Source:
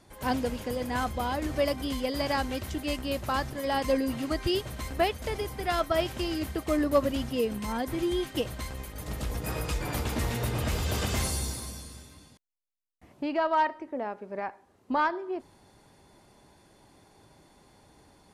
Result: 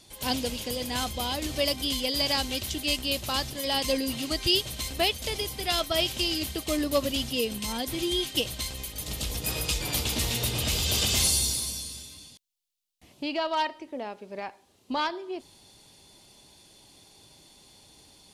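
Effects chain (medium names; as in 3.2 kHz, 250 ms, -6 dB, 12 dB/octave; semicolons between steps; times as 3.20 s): resonant high shelf 2.3 kHz +11 dB, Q 1.5; trim -1.5 dB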